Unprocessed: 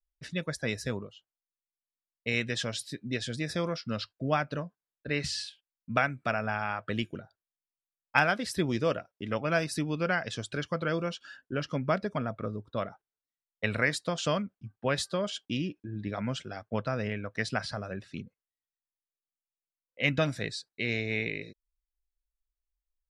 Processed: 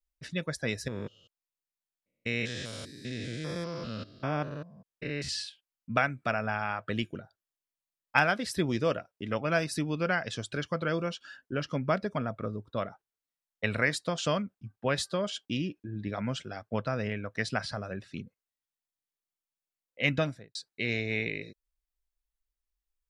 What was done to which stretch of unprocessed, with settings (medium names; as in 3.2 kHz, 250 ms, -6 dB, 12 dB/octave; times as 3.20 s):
0.88–5.29 s: spectrogram pixelated in time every 200 ms
20.12–20.55 s: studio fade out